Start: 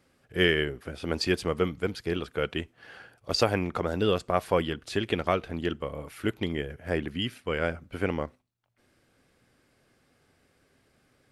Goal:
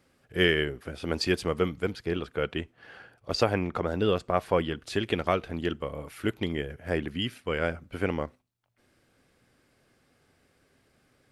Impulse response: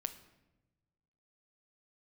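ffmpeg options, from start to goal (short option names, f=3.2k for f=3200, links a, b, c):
-filter_complex "[0:a]asettb=1/sr,asplit=3[a][b][c];[a]atrim=end=1.934[d];[b]atrim=start=1.93:end=4.74,asetpts=PTS-STARTPTS,afade=t=in:d=0.004:c=qsin,afade=t=out:st=2.806:d=0.004:c=qsin,highshelf=f=4.6k:g=-7[e];[c]atrim=start=4.736[f];[d][e]acrossfade=d=0.004:c1=hsin:c2=qsin[g];[g][f]acrossfade=d=0.004:c1=qsin:c2=hsin"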